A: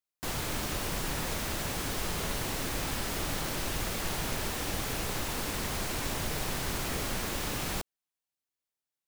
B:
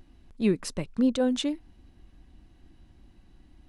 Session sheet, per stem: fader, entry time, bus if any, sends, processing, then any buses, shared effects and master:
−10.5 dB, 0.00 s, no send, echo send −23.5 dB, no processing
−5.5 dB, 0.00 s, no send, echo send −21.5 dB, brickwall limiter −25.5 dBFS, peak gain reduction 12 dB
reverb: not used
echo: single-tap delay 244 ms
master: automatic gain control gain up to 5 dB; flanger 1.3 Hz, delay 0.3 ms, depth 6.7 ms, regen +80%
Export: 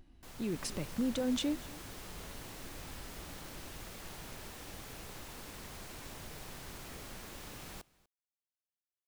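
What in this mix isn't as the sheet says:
stem A −10.5 dB → −19.0 dB
master: missing flanger 1.3 Hz, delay 0.3 ms, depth 6.7 ms, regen +80%

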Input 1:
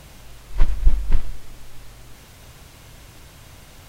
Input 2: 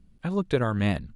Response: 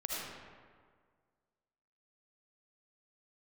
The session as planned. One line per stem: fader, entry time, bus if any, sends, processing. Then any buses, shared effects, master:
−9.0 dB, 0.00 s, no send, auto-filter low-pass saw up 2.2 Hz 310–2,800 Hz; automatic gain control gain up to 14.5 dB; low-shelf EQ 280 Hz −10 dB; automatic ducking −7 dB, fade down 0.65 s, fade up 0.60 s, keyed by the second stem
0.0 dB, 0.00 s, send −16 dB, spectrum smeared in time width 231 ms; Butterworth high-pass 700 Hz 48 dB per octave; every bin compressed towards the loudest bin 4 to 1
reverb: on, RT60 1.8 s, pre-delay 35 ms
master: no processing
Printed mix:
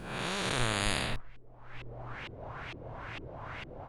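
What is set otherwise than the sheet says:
stem 2: missing Butterworth high-pass 700 Hz 48 dB per octave
master: extra parametric band 120 Hz +8 dB 0.26 octaves

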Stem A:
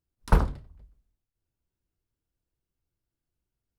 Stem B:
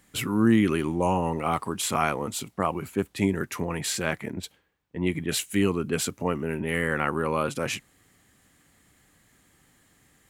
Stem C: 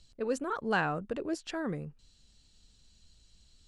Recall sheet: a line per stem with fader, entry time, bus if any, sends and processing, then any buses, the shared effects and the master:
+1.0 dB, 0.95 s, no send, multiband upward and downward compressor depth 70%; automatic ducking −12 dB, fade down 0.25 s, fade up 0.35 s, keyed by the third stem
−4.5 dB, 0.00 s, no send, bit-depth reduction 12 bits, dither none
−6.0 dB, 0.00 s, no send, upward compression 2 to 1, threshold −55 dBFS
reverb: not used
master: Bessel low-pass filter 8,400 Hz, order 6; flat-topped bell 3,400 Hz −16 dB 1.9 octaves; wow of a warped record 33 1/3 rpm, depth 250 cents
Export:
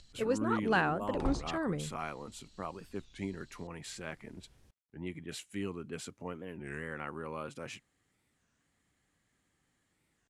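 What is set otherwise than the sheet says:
stem B −4.5 dB → −14.5 dB
stem C −6.0 dB → +0.5 dB
master: missing flat-topped bell 3,400 Hz −16 dB 1.9 octaves

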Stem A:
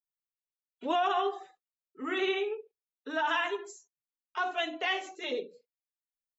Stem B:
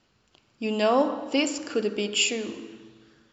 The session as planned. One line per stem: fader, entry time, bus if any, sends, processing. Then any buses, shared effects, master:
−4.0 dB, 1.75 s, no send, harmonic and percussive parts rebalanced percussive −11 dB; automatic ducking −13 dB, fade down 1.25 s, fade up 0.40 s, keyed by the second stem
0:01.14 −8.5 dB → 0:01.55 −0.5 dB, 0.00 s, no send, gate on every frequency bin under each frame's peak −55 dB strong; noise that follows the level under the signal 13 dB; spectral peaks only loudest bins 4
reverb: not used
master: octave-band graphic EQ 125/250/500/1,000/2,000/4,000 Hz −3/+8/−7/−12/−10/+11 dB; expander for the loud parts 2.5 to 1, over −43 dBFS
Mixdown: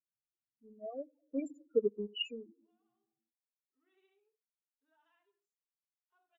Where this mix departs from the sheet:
stem A −4.0 dB → −15.0 dB
master: missing octave-band graphic EQ 125/250/500/1,000/2,000/4,000 Hz −3/+8/−7/−12/−10/+11 dB

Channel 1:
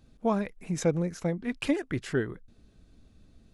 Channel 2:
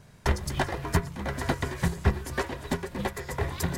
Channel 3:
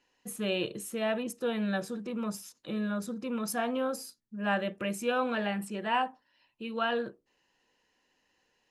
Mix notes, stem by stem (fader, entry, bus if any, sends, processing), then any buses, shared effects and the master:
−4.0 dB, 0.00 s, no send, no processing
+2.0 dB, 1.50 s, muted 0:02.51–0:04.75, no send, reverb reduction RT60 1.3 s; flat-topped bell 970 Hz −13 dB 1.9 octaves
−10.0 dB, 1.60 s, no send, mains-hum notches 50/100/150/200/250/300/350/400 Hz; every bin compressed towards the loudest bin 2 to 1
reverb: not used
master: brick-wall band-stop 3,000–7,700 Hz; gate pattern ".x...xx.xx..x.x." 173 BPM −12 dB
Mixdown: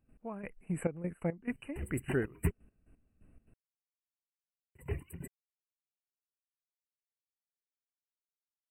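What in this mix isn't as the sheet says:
stem 2 +2.0 dB → −5.5 dB
stem 3: muted

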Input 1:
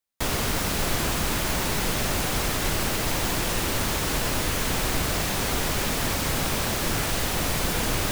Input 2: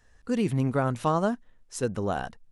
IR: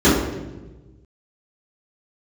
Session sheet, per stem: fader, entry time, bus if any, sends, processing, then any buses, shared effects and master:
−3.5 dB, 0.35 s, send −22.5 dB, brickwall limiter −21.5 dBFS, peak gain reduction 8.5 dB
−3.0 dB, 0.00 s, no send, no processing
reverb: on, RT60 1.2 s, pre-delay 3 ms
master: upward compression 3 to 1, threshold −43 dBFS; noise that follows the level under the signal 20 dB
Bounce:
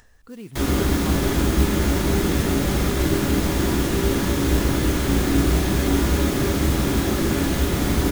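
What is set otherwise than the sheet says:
stem 1: missing brickwall limiter −21.5 dBFS, peak gain reduction 8.5 dB
stem 2 −3.0 dB → −12.0 dB

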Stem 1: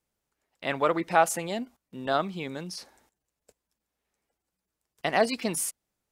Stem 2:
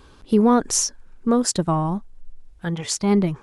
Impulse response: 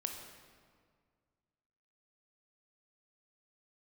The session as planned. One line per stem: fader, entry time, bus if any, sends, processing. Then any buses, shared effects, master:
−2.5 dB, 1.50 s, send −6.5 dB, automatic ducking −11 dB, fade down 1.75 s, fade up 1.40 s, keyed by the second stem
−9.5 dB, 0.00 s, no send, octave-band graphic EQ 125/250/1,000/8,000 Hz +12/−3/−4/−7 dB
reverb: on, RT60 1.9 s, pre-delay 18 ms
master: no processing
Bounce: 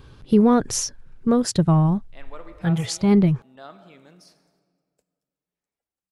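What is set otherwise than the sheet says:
stem 1 −2.5 dB → −13.5 dB
stem 2 −9.5 dB → +0.5 dB

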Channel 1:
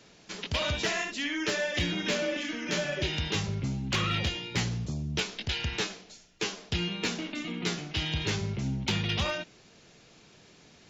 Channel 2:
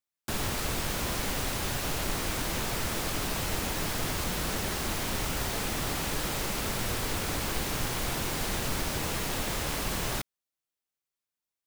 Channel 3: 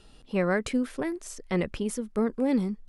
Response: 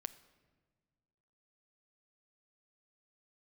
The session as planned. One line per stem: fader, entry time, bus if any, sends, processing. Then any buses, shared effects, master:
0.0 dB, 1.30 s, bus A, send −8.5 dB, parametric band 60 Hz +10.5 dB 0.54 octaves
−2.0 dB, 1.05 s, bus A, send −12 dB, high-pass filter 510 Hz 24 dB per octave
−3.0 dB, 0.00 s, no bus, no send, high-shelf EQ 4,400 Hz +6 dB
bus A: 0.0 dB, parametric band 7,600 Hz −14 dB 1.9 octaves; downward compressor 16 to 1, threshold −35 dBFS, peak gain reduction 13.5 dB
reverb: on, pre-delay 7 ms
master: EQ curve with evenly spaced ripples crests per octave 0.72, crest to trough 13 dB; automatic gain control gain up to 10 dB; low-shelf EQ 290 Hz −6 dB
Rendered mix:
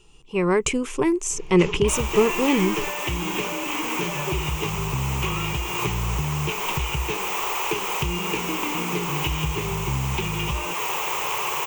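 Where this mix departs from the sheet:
stem 1: send off
stem 2: entry 1.05 s → 1.60 s
master: missing low-shelf EQ 290 Hz −6 dB

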